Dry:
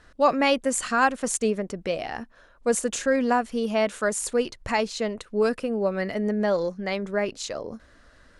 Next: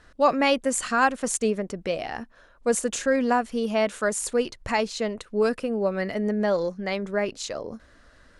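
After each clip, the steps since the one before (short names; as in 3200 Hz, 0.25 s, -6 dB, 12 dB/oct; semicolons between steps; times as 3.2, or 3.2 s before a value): nothing audible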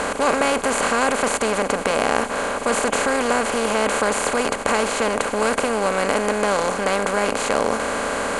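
per-bin compression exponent 0.2; gain -5 dB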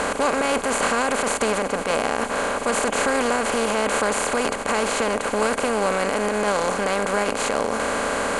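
limiter -10.5 dBFS, peak gain reduction 8.5 dB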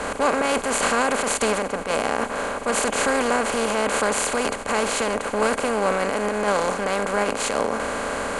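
three-band expander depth 100%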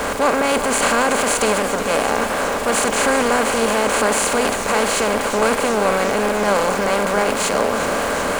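zero-crossing step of -28 dBFS; warbling echo 0.37 s, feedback 77%, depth 107 cents, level -11.5 dB; gain +2.5 dB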